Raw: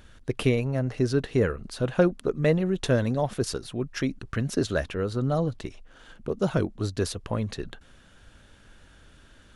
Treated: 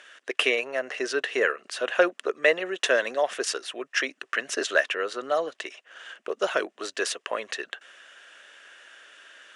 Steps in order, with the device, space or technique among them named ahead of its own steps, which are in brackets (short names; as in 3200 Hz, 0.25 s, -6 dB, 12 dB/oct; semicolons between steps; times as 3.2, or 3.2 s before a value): phone speaker on a table (speaker cabinet 480–8900 Hz, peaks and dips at 490 Hz -4 dB, 860 Hz -7 dB, 1800 Hz +7 dB, 2800 Hz +6 dB, 4300 Hz -5 dB); gain +6.5 dB